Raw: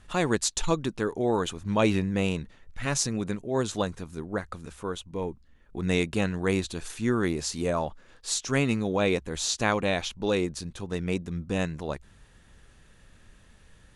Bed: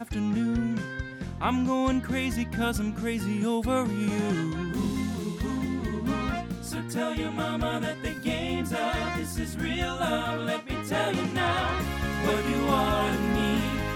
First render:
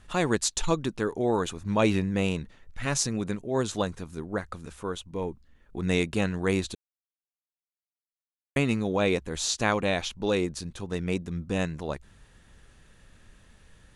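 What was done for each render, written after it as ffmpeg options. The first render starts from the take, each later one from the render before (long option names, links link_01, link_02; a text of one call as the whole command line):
ffmpeg -i in.wav -filter_complex "[0:a]asettb=1/sr,asplit=3[link_01][link_02][link_03];[link_01]atrim=end=1.274[link_04];[link_02]atrim=start=1.27:end=1.82,asetpts=PTS-STARTPTS,afade=type=in:duration=0.004:curve=qsin,afade=type=out:start_time=0.546:duration=0.004:curve=qsin,bandreject=frequency=3100:width=13[link_05];[link_03]atrim=start=1.816[link_06];[link_04][link_05]acrossfade=duration=0.004:curve1=hsin:curve2=qsin[link_07];[link_07][link_06]acrossfade=duration=0.004:curve1=qsin:curve2=hsin,asplit=3[link_08][link_09][link_10];[link_08]atrim=end=6.75,asetpts=PTS-STARTPTS,afade=type=out:start_time=6.746:duration=0.004:curve=hsin[link_11];[link_09]atrim=start=6.75:end=8.56,asetpts=PTS-STARTPTS,volume=0[link_12];[link_10]atrim=start=8.56,asetpts=PTS-STARTPTS,afade=type=in:duration=0.004:curve=hsin[link_13];[link_11][link_12][link_13]concat=n=3:v=0:a=1" out.wav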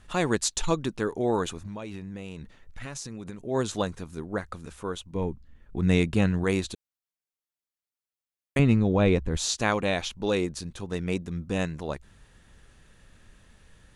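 ffmpeg -i in.wav -filter_complex "[0:a]asettb=1/sr,asplit=3[link_01][link_02][link_03];[link_01]atrim=end=1.624[link_04];[link_02]atrim=start=1.62:end=3.45,asetpts=PTS-STARTPTS,afade=type=in:duration=0.004:curve=qsin,afade=type=out:start_time=1.826:duration=0.004:curve=qsin,acompressor=threshold=-33dB:ratio=12:attack=3.2:release=140:knee=1:detection=peak[link_05];[link_03]atrim=start=3.446[link_06];[link_04][link_05]acrossfade=duration=0.004:curve1=hsin:curve2=qsin[link_07];[link_07][link_06]acrossfade=duration=0.004:curve1=qsin:curve2=hsin,asettb=1/sr,asplit=3[link_08][link_09][link_10];[link_08]atrim=end=5.154[link_11];[link_09]atrim=start=5.15:end=6.44,asetpts=PTS-STARTPTS,afade=type=in:duration=0.004:curve=qsin,afade=type=out:start_time=1.286:duration=0.004:curve=qsin,bass=frequency=250:gain=7,treble=frequency=4000:gain=-3[link_12];[link_10]atrim=start=6.436[link_13];[link_11][link_12]acrossfade=duration=0.004:curve1=hsin:curve2=qsin[link_14];[link_14][link_13]acrossfade=duration=0.004:curve1=qsin:curve2=hsin,asettb=1/sr,asplit=3[link_15][link_16][link_17];[link_15]atrim=end=8.594[link_18];[link_16]atrim=start=8.59:end=9.37,asetpts=PTS-STARTPTS,afade=type=in:duration=0.004:curve=qsin,afade=type=out:start_time=0.776:duration=0.004:curve=qsin,aemphasis=mode=reproduction:type=bsi[link_19];[link_17]atrim=start=9.366[link_20];[link_18][link_19]acrossfade=duration=0.004:curve1=hsin:curve2=qsin[link_21];[link_21][link_20]acrossfade=duration=0.004:curve1=qsin:curve2=hsin" out.wav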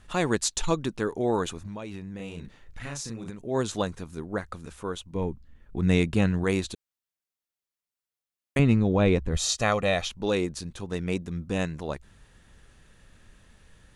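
ffmpeg -i in.wav -filter_complex "[0:a]asettb=1/sr,asplit=3[link_01][link_02][link_03];[link_01]atrim=end=2.164[link_04];[link_02]atrim=start=2.16:end=3.3,asetpts=PTS-STARTPTS,afade=type=in:duration=0.004:curve=qsin,afade=type=out:start_time=1.136:duration=0.004:curve=qsin,asplit=2[link_05][link_06];[link_06]adelay=35,volume=-3dB[link_07];[link_05][link_07]amix=inputs=2:normalize=0,atrim=end_sample=50274[link_08];[link_03]atrim=start=3.296[link_09];[link_04][link_08]acrossfade=duration=0.004:curve1=hsin:curve2=qsin[link_10];[link_10][link_09]acrossfade=duration=0.004:curve1=qsin:curve2=hsin,asettb=1/sr,asplit=3[link_11][link_12][link_13];[link_11]atrim=end=9.324[link_14];[link_12]atrim=start=9.32:end=10.07,asetpts=PTS-STARTPTS,afade=type=in:duration=0.004:curve=qsin,afade=type=out:start_time=0.746:duration=0.004:curve=qsin,aecho=1:1:1.6:0.51,atrim=end_sample=33075[link_15];[link_13]atrim=start=10.066[link_16];[link_14][link_15]acrossfade=duration=0.004:curve1=hsin:curve2=qsin[link_17];[link_17][link_16]acrossfade=duration=0.004:curve1=qsin:curve2=hsin" out.wav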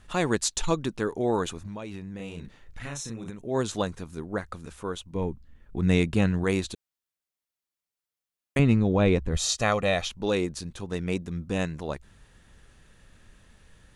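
ffmpeg -i in.wav -filter_complex "[0:a]asettb=1/sr,asplit=3[link_01][link_02][link_03];[link_01]atrim=end=2.874[link_04];[link_02]atrim=start=2.87:end=3.42,asetpts=PTS-STARTPTS,afade=type=in:duration=0.004:curve=qsin,afade=type=out:start_time=0.546:duration=0.004:curve=qsin,asuperstop=centerf=4700:order=12:qfactor=6.3[link_05];[link_03]atrim=start=3.416[link_06];[link_04][link_05]acrossfade=duration=0.004:curve1=hsin:curve2=qsin[link_07];[link_07][link_06]acrossfade=duration=0.004:curve1=qsin:curve2=hsin" out.wav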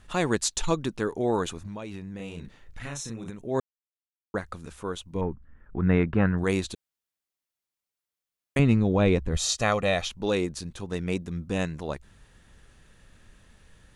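ffmpeg -i in.wav -filter_complex "[0:a]asettb=1/sr,asplit=3[link_01][link_02][link_03];[link_01]atrim=end=5.214[link_04];[link_02]atrim=start=5.21:end=6.38,asetpts=PTS-STARTPTS,afade=type=in:duration=0.004:curve=qsin,afade=type=out:start_time=1.166:duration=0.004:curve=qsin,lowpass=frequency=1500:width_type=q:width=2.2[link_05];[link_03]atrim=start=6.376[link_06];[link_04][link_05]acrossfade=duration=0.004:curve1=hsin:curve2=qsin[link_07];[link_07][link_06]acrossfade=duration=0.004:curve1=qsin:curve2=hsin,asplit=3[link_08][link_09][link_10];[link_08]atrim=end=3.6,asetpts=PTS-STARTPTS,afade=type=out:start_time=3.596:duration=0.004:curve=hsin[link_11];[link_09]atrim=start=3.6:end=4.34,asetpts=PTS-STARTPTS,volume=0[link_12];[link_10]atrim=start=4.34,asetpts=PTS-STARTPTS,afade=type=in:duration=0.004:curve=hsin[link_13];[link_11][link_12][link_13]concat=n=3:v=0:a=1" out.wav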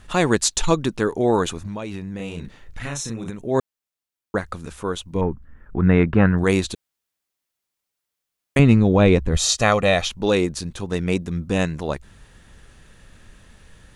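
ffmpeg -i in.wav -af "volume=7dB,alimiter=limit=-3dB:level=0:latency=1" out.wav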